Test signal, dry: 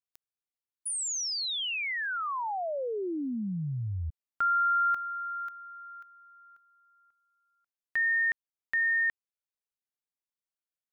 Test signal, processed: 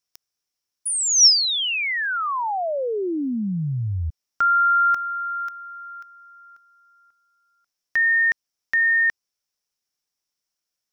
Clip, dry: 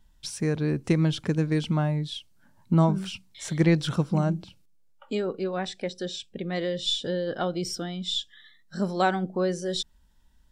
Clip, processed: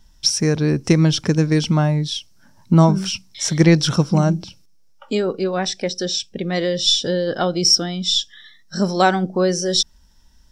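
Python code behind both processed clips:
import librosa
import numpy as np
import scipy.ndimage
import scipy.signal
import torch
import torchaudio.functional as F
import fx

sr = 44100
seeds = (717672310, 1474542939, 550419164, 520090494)

y = fx.peak_eq(x, sr, hz=5500.0, db=14.5, octaves=0.34)
y = y * librosa.db_to_amplitude(8.0)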